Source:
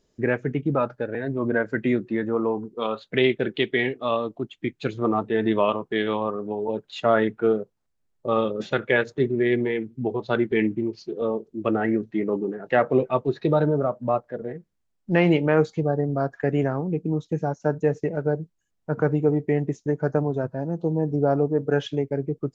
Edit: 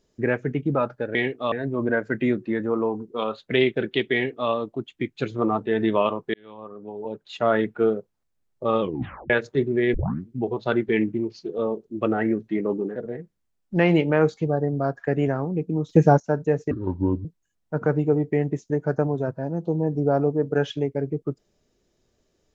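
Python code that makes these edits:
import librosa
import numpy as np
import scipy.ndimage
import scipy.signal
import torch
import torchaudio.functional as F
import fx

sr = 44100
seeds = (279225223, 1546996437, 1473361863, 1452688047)

y = fx.edit(x, sr, fx.duplicate(start_s=3.76, length_s=0.37, to_s=1.15),
    fx.fade_in_span(start_s=5.97, length_s=1.34),
    fx.tape_stop(start_s=8.44, length_s=0.49),
    fx.tape_start(start_s=9.57, length_s=0.33),
    fx.cut(start_s=12.59, length_s=1.73),
    fx.clip_gain(start_s=17.25, length_s=0.31, db=10.5),
    fx.speed_span(start_s=18.07, length_s=0.34, speed=0.63), tone=tone)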